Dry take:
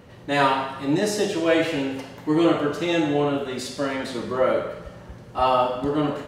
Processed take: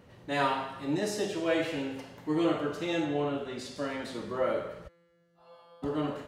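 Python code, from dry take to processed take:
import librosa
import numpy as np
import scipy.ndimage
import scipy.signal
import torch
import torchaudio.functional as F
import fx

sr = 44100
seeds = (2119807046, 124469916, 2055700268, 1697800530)

y = fx.high_shelf(x, sr, hz=10000.0, db=-11.0, at=(3.05, 3.76))
y = fx.comb_fb(y, sr, f0_hz=170.0, decay_s=2.0, harmonics='all', damping=0.0, mix_pct=100, at=(4.87, 5.82), fade=0.02)
y = F.gain(torch.from_numpy(y), -8.5).numpy()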